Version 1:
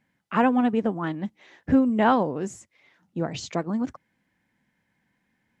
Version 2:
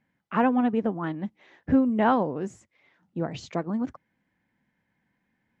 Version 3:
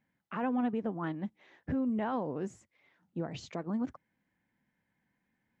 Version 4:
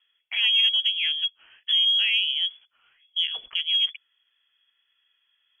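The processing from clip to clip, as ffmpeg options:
ffmpeg -i in.wav -af "lowpass=frequency=2700:poles=1,volume=-1.5dB" out.wav
ffmpeg -i in.wav -af "alimiter=limit=-20.5dB:level=0:latency=1:release=80,volume=-5dB" out.wav
ffmpeg -i in.wav -af "lowpass=frequency=3000:width_type=q:width=0.5098,lowpass=frequency=3000:width_type=q:width=0.6013,lowpass=frequency=3000:width_type=q:width=0.9,lowpass=frequency=3000:width_type=q:width=2.563,afreqshift=-3500,asubboost=boost=2:cutoff=93,aexciter=amount=3:drive=4.2:freq=2100,volume=2.5dB" out.wav

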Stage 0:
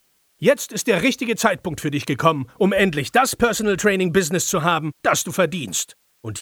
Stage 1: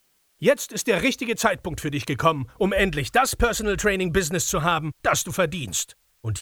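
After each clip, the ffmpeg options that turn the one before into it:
ffmpeg -i in.wav -af "asubboost=boost=9:cutoff=75,volume=-2.5dB" out.wav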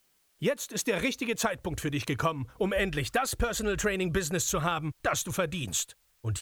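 ffmpeg -i in.wav -af "acompressor=threshold=-21dB:ratio=4,volume=-3.5dB" out.wav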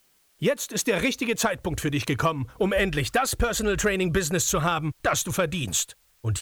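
ffmpeg -i in.wav -af "asoftclip=type=tanh:threshold=-16dB,volume=5.5dB" out.wav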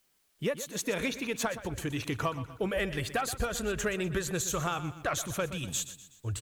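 ffmpeg -i in.wav -af "aecho=1:1:123|246|369|492:0.211|0.0972|0.0447|0.0206,volume=-8dB" out.wav

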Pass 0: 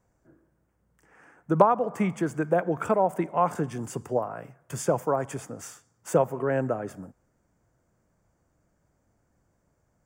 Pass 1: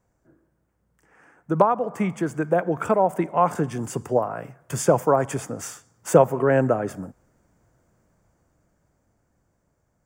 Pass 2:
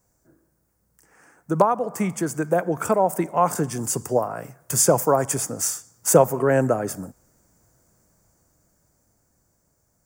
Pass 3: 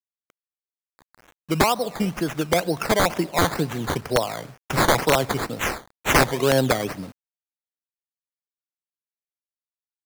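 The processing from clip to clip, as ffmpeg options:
ffmpeg -i in.wav -af "dynaudnorm=framelen=510:gausssize=9:maxgain=11.5dB" out.wav
ffmpeg -i in.wav -af "aexciter=amount=3:drive=7.3:freq=4400" out.wav
ffmpeg -i in.wav -af "acrusher=samples=13:mix=1:aa=0.000001:lfo=1:lforange=7.8:lforate=2.1,aeval=exprs='(mod(2.82*val(0)+1,2)-1)/2.82':channel_layout=same,acrusher=bits=7:mix=0:aa=0.000001" out.wav

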